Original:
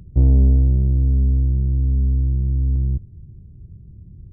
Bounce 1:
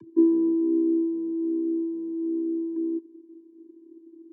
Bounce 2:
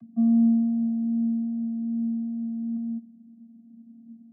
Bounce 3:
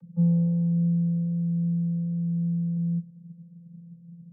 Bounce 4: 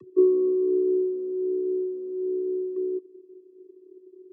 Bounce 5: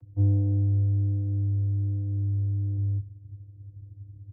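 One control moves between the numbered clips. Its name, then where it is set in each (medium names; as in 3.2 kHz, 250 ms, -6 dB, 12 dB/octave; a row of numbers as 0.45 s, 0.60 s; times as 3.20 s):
vocoder, frequency: 330 Hz, 230 Hz, 170 Hz, 370 Hz, 100 Hz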